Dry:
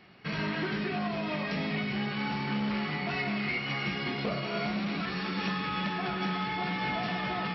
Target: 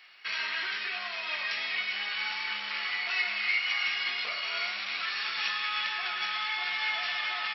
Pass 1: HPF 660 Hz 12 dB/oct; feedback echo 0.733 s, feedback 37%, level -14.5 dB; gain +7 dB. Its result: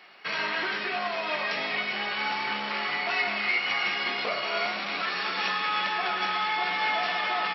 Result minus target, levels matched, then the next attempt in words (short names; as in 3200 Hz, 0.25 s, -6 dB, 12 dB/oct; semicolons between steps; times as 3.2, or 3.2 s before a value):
500 Hz band +12.5 dB
HPF 1800 Hz 12 dB/oct; feedback echo 0.733 s, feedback 37%, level -14.5 dB; gain +7 dB